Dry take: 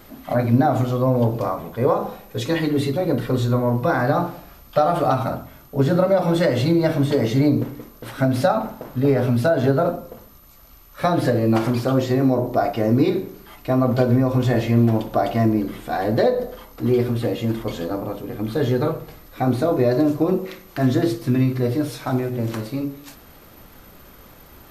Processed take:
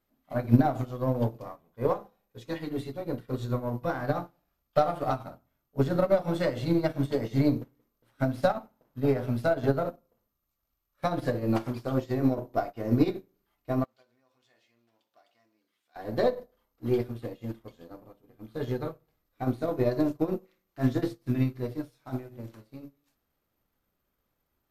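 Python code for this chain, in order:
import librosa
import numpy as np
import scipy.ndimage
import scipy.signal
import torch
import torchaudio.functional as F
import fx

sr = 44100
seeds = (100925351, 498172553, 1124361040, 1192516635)

y = np.where(x < 0.0, 10.0 ** (-3.0 / 20.0) * x, x)
y = fx.bandpass_q(y, sr, hz=4700.0, q=0.65, at=(13.84, 15.96))
y = fx.upward_expand(y, sr, threshold_db=-34.0, expansion=2.5)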